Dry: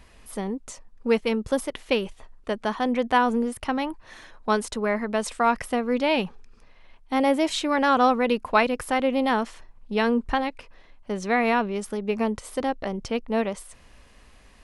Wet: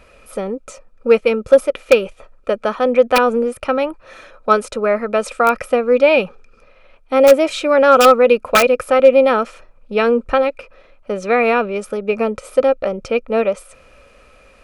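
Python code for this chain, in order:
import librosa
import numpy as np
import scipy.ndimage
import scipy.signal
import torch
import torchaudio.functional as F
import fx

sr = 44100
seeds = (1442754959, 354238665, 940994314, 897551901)

y = (np.mod(10.0 ** (10.0 / 20.0) * x + 1.0, 2.0) - 1.0) / 10.0 ** (10.0 / 20.0)
y = fx.small_body(y, sr, hz=(540.0, 1300.0, 2400.0), ring_ms=25, db=16)
y = np.clip(y, -10.0 ** (-2.0 / 20.0), 10.0 ** (-2.0 / 20.0))
y = y * librosa.db_to_amplitude(1.0)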